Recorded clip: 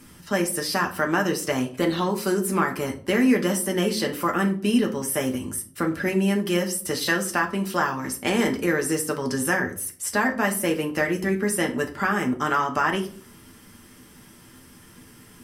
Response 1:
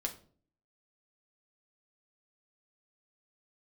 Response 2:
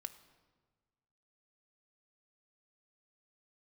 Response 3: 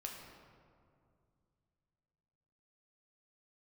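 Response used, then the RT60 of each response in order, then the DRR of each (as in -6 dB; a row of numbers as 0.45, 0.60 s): 1; 0.45, 1.4, 2.3 s; 2.0, 7.5, -0.5 dB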